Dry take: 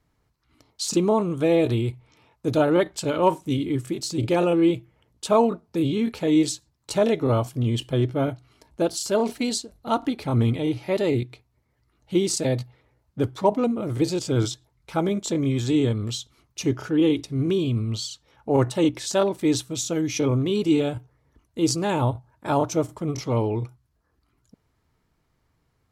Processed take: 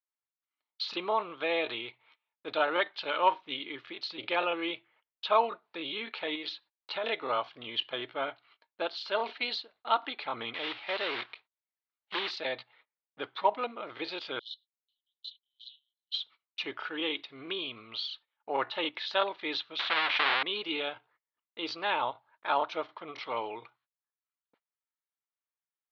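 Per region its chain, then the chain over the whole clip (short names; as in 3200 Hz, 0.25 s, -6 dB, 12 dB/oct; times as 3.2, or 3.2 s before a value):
6.35–7.04 LPF 5300 Hz + compressor, threshold -21 dBFS
10.54–12.31 block floating point 3-bit + hard clip -19.5 dBFS
14.39–16.14 compressor, threshold -26 dBFS + rippled Chebyshev high-pass 2900 Hz, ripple 9 dB
19.79–20.43 half-waves squared off + tape spacing loss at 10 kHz 32 dB + spectral compressor 2:1
whole clip: steep low-pass 4000 Hz 48 dB/oct; gate -52 dBFS, range -27 dB; HPF 1100 Hz 12 dB/oct; gain +2.5 dB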